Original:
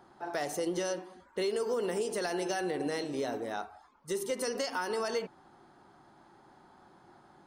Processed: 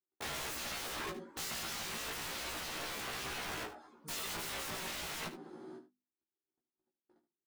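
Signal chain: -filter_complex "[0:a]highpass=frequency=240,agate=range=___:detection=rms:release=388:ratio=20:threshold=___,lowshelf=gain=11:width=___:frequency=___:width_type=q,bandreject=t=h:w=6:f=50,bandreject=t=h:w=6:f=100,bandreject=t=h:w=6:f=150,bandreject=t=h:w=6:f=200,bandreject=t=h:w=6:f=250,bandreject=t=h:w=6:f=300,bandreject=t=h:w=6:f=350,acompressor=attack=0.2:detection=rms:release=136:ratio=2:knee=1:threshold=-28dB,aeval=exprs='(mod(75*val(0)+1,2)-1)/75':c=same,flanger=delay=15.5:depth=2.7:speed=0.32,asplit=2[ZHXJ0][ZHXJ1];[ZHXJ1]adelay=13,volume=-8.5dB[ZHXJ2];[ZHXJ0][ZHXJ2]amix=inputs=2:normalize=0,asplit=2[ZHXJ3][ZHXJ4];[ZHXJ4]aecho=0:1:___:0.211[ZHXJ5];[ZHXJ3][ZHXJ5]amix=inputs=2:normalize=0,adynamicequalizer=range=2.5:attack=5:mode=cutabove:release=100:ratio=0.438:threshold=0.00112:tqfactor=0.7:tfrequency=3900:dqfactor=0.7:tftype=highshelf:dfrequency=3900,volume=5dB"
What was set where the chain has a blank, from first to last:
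-55dB, -53dB, 1.5, 530, 75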